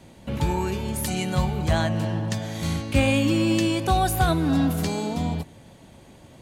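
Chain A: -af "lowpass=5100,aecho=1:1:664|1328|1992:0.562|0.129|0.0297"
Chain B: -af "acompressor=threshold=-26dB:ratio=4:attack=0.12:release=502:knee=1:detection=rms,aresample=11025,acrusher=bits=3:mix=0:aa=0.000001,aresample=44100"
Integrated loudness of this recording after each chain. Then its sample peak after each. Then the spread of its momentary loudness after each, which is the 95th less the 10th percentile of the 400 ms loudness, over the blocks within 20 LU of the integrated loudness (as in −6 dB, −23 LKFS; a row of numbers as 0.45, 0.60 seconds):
−23.5, −40.5 LKFS; −7.5, −14.5 dBFS; 11, 9 LU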